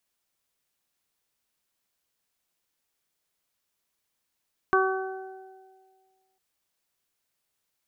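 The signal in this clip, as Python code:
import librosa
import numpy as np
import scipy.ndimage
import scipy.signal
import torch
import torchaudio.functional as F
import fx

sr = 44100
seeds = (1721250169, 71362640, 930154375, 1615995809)

y = fx.additive(sr, length_s=1.65, hz=380.0, level_db=-21, upper_db=(-5.0, 1, -2.5), decay_s=1.68, upper_decays_s=(1.97, 0.76, 1.15))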